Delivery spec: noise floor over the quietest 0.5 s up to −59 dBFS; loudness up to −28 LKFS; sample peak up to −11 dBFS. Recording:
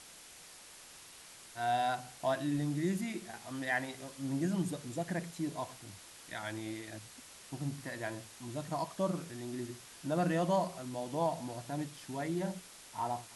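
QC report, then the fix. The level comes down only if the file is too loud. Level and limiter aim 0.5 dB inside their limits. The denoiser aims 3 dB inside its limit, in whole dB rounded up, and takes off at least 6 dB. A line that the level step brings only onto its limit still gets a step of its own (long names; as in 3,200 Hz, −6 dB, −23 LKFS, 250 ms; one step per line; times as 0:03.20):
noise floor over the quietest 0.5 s −54 dBFS: out of spec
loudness −37.0 LKFS: in spec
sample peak −20.5 dBFS: in spec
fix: broadband denoise 8 dB, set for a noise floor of −54 dBFS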